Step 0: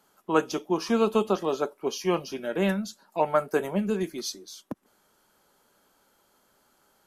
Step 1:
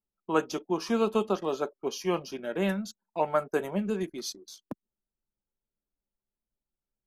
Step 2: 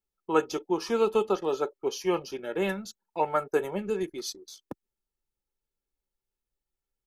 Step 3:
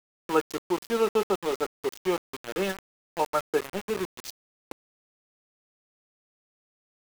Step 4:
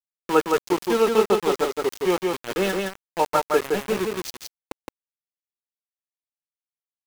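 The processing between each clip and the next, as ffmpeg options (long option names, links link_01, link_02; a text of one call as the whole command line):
ffmpeg -i in.wav -af "anlmdn=0.0631,volume=-3dB" out.wav
ffmpeg -i in.wav -af "aecho=1:1:2.3:0.47" out.wav
ffmpeg -i in.wav -af "aeval=exprs='val(0)*gte(abs(val(0)),0.0335)':channel_layout=same" out.wav
ffmpeg -i in.wav -af "aecho=1:1:167:0.668,volume=5dB" out.wav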